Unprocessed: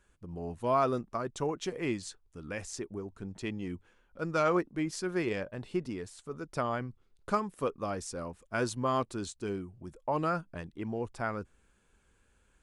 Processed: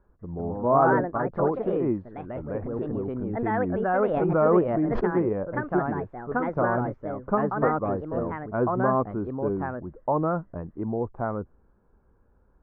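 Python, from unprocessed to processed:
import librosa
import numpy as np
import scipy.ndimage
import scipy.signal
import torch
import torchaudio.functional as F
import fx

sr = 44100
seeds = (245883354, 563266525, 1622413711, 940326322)

y = scipy.signal.sosfilt(scipy.signal.butter(4, 1100.0, 'lowpass', fs=sr, output='sos'), x)
y = fx.echo_pitch(y, sr, ms=193, semitones=3, count=2, db_per_echo=-3.0)
y = fx.pre_swell(y, sr, db_per_s=29.0, at=(2.62, 4.99), fade=0.02)
y = F.gain(torch.from_numpy(y), 7.0).numpy()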